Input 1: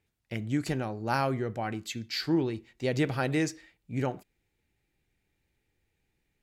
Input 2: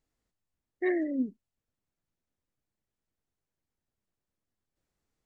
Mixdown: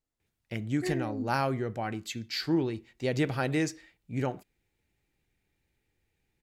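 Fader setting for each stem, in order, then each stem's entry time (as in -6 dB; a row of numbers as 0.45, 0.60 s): -0.5, -6.0 dB; 0.20, 0.00 s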